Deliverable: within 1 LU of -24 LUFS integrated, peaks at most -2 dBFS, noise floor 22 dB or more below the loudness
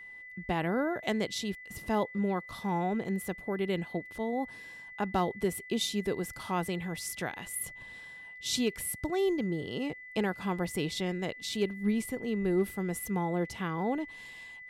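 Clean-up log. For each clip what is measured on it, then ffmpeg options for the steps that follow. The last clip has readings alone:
steady tone 2000 Hz; tone level -45 dBFS; loudness -33.0 LUFS; peak -18.0 dBFS; loudness target -24.0 LUFS
-> -af "bandreject=f=2k:w=30"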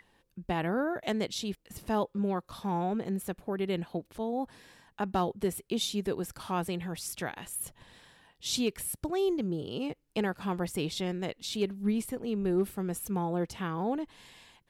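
steady tone none; loudness -33.0 LUFS; peak -18.0 dBFS; loudness target -24.0 LUFS
-> -af "volume=9dB"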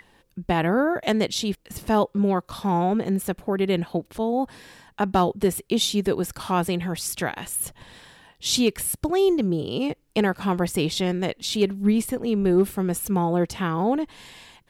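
loudness -24.0 LUFS; peak -9.0 dBFS; noise floor -63 dBFS

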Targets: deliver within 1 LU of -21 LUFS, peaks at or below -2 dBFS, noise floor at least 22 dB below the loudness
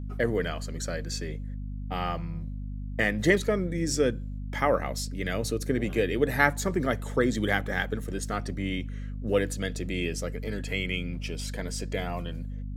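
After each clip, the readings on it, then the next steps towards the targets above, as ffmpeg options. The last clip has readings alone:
hum 50 Hz; harmonics up to 250 Hz; hum level -32 dBFS; loudness -29.5 LUFS; peak -6.0 dBFS; loudness target -21.0 LUFS
-> -af "bandreject=f=50:t=h:w=4,bandreject=f=100:t=h:w=4,bandreject=f=150:t=h:w=4,bandreject=f=200:t=h:w=4,bandreject=f=250:t=h:w=4"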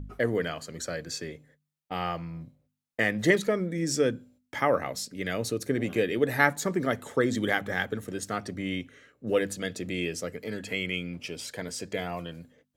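hum none; loudness -29.5 LUFS; peak -6.0 dBFS; loudness target -21.0 LUFS
-> -af "volume=8.5dB,alimiter=limit=-2dB:level=0:latency=1"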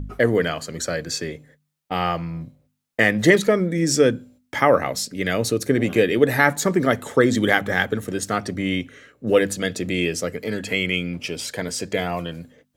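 loudness -21.5 LUFS; peak -2.0 dBFS; noise floor -71 dBFS

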